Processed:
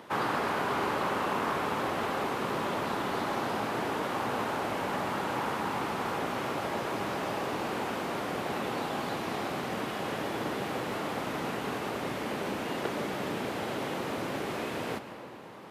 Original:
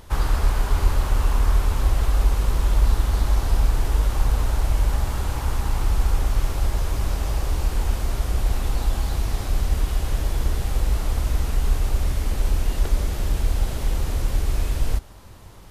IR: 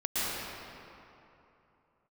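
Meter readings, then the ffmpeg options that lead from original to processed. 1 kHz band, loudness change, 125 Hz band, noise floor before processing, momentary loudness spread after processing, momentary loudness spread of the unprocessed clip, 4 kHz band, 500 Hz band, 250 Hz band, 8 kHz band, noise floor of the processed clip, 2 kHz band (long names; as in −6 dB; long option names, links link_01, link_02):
+3.0 dB, −8.0 dB, −18.5 dB, −40 dBFS, 4 LU, 4 LU, −2.5 dB, +3.0 dB, +1.5 dB, −10.0 dB, −43 dBFS, +2.5 dB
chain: -filter_complex "[0:a]highpass=frequency=110:width=0.5412,highpass=frequency=110:width=1.3066,acrossover=split=170 3300:gain=0.0708 1 0.2[link_01][link_02][link_03];[link_01][link_02][link_03]amix=inputs=3:normalize=0,asplit=2[link_04][link_05];[1:a]atrim=start_sample=2205[link_06];[link_05][link_06]afir=irnorm=-1:irlink=0,volume=-18.5dB[link_07];[link_04][link_07]amix=inputs=2:normalize=0,volume=2dB"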